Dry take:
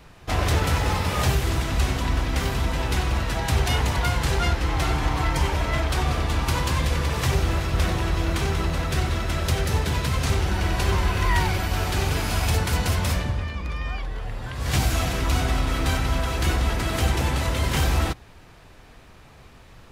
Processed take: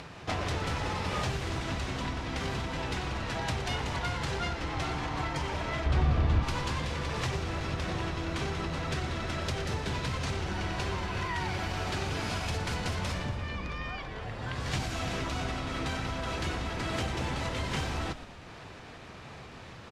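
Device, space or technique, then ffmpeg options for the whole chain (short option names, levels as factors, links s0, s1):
upward and downward compression: -filter_complex "[0:a]acompressor=mode=upward:threshold=0.0141:ratio=2.5,acompressor=threshold=0.0398:ratio=4,highpass=92,asettb=1/sr,asplit=3[s0][s1][s2];[s0]atrim=end=5.864[s3];[s1]atrim=start=5.86:end=6.43,asetpts=PTS-STARTPTS,afade=t=in:d=0.004:c=qsin,afade=t=out:st=0.566:d=0.004:c=qsin,aemphasis=mode=reproduction:type=bsi[s4];[s2]atrim=start=6.426[s5];[s3][s4]acrossfade=d=0.004:c1=hsin:c2=qsin[s6];[s6][s5]acrossfade=d=0.004:c1=qsin:c2=hsin,lowpass=6600,asplit=7[s7][s8][s9][s10][s11][s12][s13];[s8]adelay=117,afreqshift=-47,volume=0.224[s14];[s9]adelay=234,afreqshift=-94,volume=0.13[s15];[s10]adelay=351,afreqshift=-141,volume=0.075[s16];[s11]adelay=468,afreqshift=-188,volume=0.0437[s17];[s12]adelay=585,afreqshift=-235,volume=0.0254[s18];[s13]adelay=702,afreqshift=-282,volume=0.0146[s19];[s7][s14][s15][s16][s17][s18][s19]amix=inputs=7:normalize=0"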